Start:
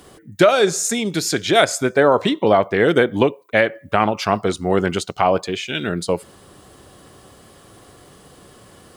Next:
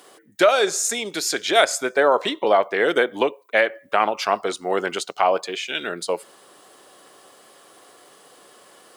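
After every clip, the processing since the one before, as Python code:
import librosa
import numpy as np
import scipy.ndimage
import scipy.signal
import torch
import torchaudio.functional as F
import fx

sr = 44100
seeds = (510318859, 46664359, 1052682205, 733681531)

y = scipy.signal.sosfilt(scipy.signal.butter(2, 450.0, 'highpass', fs=sr, output='sos'), x)
y = y * 10.0 ** (-1.0 / 20.0)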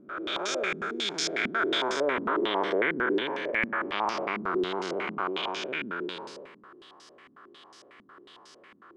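y = fx.spec_blur(x, sr, span_ms=543.0)
y = fx.band_shelf(y, sr, hz=610.0, db=-9.0, octaves=1.0)
y = fx.filter_held_lowpass(y, sr, hz=11.0, low_hz=230.0, high_hz=5500.0)
y = y * 10.0 ** (-2.0 / 20.0)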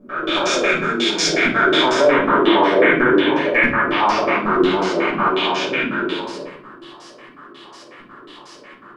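y = fx.room_shoebox(x, sr, seeds[0], volume_m3=370.0, walls='furnished', distance_m=5.8)
y = y * 10.0 ** (3.0 / 20.0)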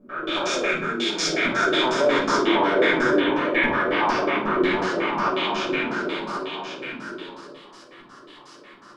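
y = x + 10.0 ** (-7.0 / 20.0) * np.pad(x, (int(1092 * sr / 1000.0), 0))[:len(x)]
y = y * 10.0 ** (-6.0 / 20.0)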